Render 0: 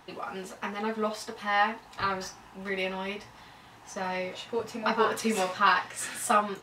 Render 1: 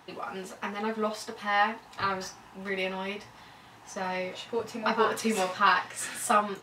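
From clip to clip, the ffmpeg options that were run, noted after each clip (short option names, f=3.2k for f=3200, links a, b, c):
-af "highpass=61"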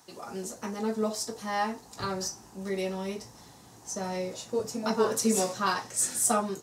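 -filter_complex "[0:a]highshelf=f=4.2k:t=q:w=1.5:g=13.5,acrossover=split=610[a][b];[a]dynaudnorm=f=150:g=3:m=10dB[c];[c][b]amix=inputs=2:normalize=0,volume=-6.5dB"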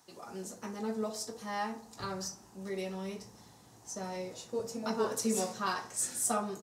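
-filter_complex "[0:a]asplit=2[a][b];[b]adelay=63,lowpass=f=1.4k:p=1,volume=-11dB,asplit=2[c][d];[d]adelay=63,lowpass=f=1.4k:p=1,volume=0.54,asplit=2[e][f];[f]adelay=63,lowpass=f=1.4k:p=1,volume=0.54,asplit=2[g][h];[h]adelay=63,lowpass=f=1.4k:p=1,volume=0.54,asplit=2[i][j];[j]adelay=63,lowpass=f=1.4k:p=1,volume=0.54,asplit=2[k][l];[l]adelay=63,lowpass=f=1.4k:p=1,volume=0.54[m];[a][c][e][g][i][k][m]amix=inputs=7:normalize=0,volume=-6dB"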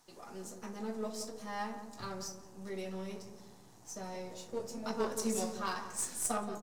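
-filter_complex "[0:a]aeval=exprs='if(lt(val(0),0),0.447*val(0),val(0))':c=same,aeval=exprs='0.112*(cos(1*acos(clip(val(0)/0.112,-1,1)))-cos(1*PI/2))+0.00562*(cos(8*acos(clip(val(0)/0.112,-1,1)))-cos(8*PI/2))':c=same,asplit=2[a][b];[b]adelay=175,lowpass=f=1k:p=1,volume=-8dB,asplit=2[c][d];[d]adelay=175,lowpass=f=1k:p=1,volume=0.48,asplit=2[e][f];[f]adelay=175,lowpass=f=1k:p=1,volume=0.48,asplit=2[g][h];[h]adelay=175,lowpass=f=1k:p=1,volume=0.48,asplit=2[i][j];[j]adelay=175,lowpass=f=1k:p=1,volume=0.48,asplit=2[k][l];[l]adelay=175,lowpass=f=1k:p=1,volume=0.48[m];[a][c][e][g][i][k][m]amix=inputs=7:normalize=0"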